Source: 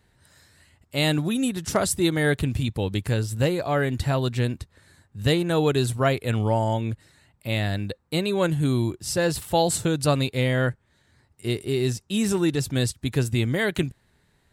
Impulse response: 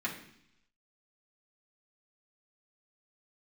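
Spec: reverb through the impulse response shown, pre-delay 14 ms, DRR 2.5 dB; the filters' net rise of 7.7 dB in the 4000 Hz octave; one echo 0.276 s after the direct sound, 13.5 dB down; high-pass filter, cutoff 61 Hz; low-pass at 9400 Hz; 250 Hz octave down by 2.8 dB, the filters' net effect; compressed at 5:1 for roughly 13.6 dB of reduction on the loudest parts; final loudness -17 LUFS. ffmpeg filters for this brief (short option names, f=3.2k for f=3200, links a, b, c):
-filter_complex "[0:a]highpass=61,lowpass=9.4k,equalizer=f=250:t=o:g=-4,equalizer=f=4k:t=o:g=9,acompressor=threshold=-31dB:ratio=5,aecho=1:1:276:0.211,asplit=2[a][b];[1:a]atrim=start_sample=2205,adelay=14[c];[b][c]afir=irnorm=-1:irlink=0,volume=-7.5dB[d];[a][d]amix=inputs=2:normalize=0,volume=15.5dB"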